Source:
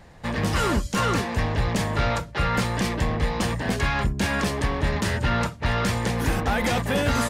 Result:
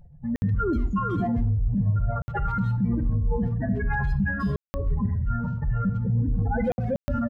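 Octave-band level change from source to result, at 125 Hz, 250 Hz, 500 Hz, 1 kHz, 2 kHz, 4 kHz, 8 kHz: +1.5 dB, 0.0 dB, -5.0 dB, -6.5 dB, -8.0 dB, under -25 dB, under -25 dB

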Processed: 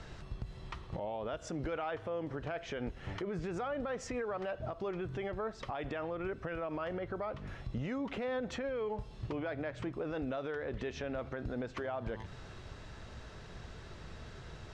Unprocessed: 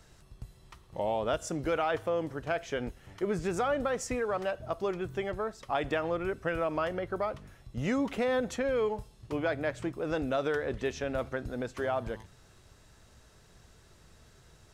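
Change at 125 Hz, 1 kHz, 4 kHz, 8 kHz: -2.0 dB, -7.0 dB, -6.0 dB, -9.5 dB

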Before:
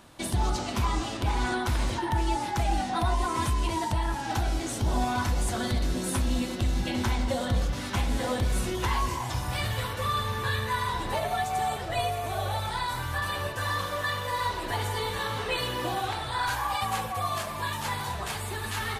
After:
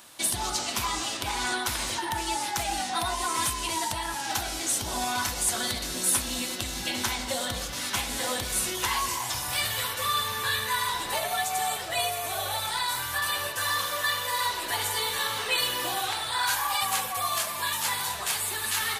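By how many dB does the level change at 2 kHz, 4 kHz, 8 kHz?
+3.0 dB, +6.5 dB, +10.5 dB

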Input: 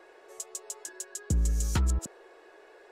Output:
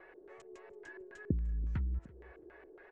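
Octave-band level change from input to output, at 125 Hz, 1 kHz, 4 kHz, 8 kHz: -7.5 dB, -13.5 dB, under -20 dB, under -30 dB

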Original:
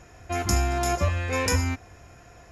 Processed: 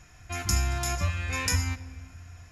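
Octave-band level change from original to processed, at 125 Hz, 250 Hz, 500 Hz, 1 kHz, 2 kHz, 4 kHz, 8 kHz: -2.0 dB, -8.0 dB, -11.5 dB, -7.0 dB, -2.0 dB, 0.0 dB, 0.0 dB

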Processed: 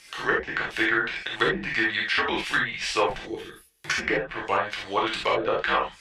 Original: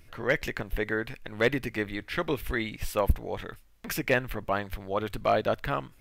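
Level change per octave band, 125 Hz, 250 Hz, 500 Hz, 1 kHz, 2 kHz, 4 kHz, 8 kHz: -7.0 dB, +1.0 dB, +0.5 dB, +6.0 dB, +8.0 dB, +10.5 dB, +4.5 dB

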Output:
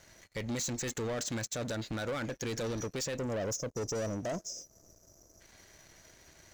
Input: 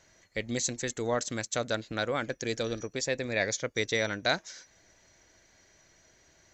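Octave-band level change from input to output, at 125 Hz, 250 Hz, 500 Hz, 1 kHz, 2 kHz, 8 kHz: +0.5 dB, -1.5 dB, -4.5 dB, -6.5 dB, -10.5 dB, -2.5 dB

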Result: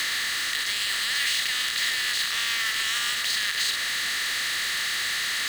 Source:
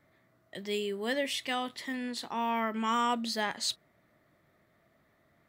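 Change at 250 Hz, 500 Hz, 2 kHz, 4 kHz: -16.5 dB, -13.0 dB, +14.5 dB, +14.5 dB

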